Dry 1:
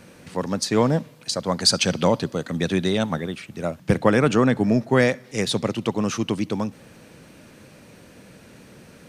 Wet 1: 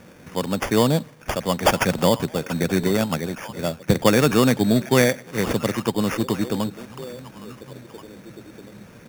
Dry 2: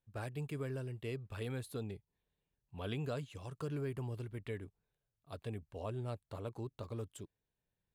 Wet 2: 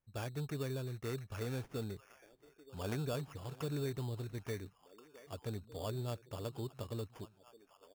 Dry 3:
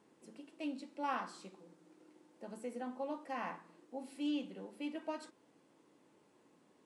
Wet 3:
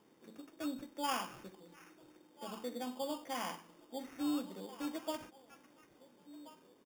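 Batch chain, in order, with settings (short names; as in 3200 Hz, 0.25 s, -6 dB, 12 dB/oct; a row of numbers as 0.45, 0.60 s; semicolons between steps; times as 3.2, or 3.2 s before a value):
delay with a stepping band-pass 0.689 s, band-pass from 2800 Hz, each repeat -1.4 oct, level -10 dB; downsampling 16000 Hz; sample-and-hold 11×; gain +1 dB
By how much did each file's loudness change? +1.0, +1.0, +1.5 LU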